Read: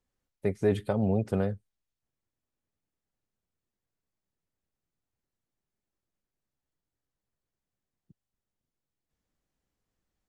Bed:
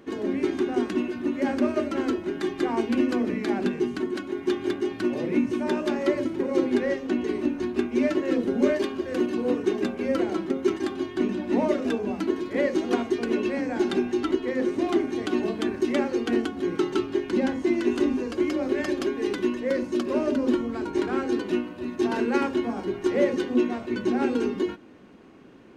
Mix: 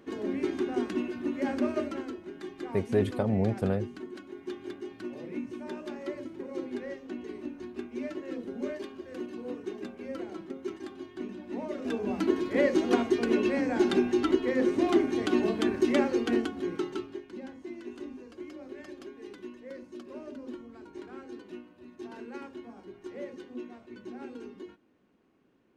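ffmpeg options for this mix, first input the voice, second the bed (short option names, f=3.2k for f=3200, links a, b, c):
-filter_complex "[0:a]adelay=2300,volume=-0.5dB[a];[1:a]volume=7.5dB,afade=t=out:st=1.85:d=0.21:silence=0.398107,afade=t=in:st=11.7:d=0.55:silence=0.237137,afade=t=out:st=15.99:d=1.28:silence=0.133352[b];[a][b]amix=inputs=2:normalize=0"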